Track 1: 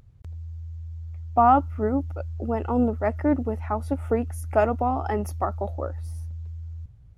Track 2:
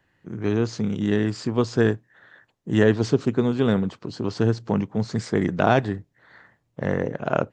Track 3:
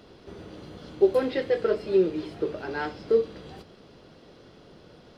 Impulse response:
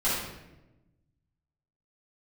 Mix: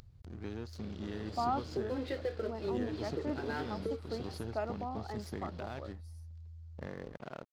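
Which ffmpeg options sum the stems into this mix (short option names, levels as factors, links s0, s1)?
-filter_complex "[0:a]acompressor=mode=upward:threshold=0.0355:ratio=2.5,volume=0.158[s0];[1:a]acompressor=threshold=0.0562:ratio=4,volume=0.237[s1];[2:a]aemphasis=mode=reproduction:type=50fm,acompressor=threshold=0.0316:ratio=4,adelay=750,volume=0.708[s2];[s1][s2]amix=inputs=2:normalize=0,aeval=exprs='sgn(val(0))*max(abs(val(0))-0.00224,0)':c=same,alimiter=level_in=1.33:limit=0.0631:level=0:latency=1:release=248,volume=0.75,volume=1[s3];[s0][s3]amix=inputs=2:normalize=0,equalizer=f=4500:t=o:w=0.62:g=7.5"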